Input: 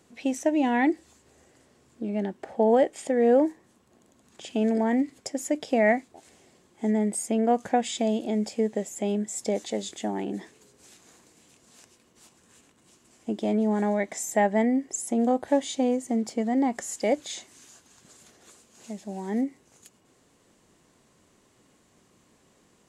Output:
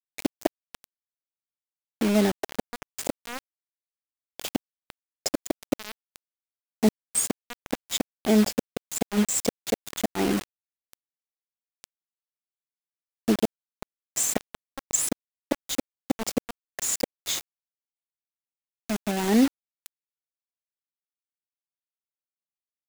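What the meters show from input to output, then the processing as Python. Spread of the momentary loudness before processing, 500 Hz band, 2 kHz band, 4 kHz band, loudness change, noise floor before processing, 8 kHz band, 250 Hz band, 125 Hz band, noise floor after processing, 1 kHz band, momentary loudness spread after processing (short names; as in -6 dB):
11 LU, -5.5 dB, -3.0 dB, +6.0 dB, -1.0 dB, -63 dBFS, +6.5 dB, -1.5 dB, n/a, under -85 dBFS, -7.0 dB, 12 LU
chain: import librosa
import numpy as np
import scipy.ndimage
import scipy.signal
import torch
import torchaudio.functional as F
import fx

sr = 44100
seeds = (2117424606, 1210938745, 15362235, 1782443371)

y = fx.gate_flip(x, sr, shuts_db=-17.0, range_db=-24)
y = fx.quant_dither(y, sr, seeds[0], bits=6, dither='none')
y = y * 10.0 ** (7.5 / 20.0)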